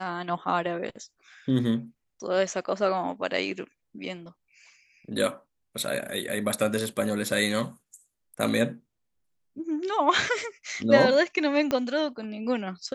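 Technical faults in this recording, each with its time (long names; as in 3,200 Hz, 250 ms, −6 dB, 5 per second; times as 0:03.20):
0:11.71: click −13 dBFS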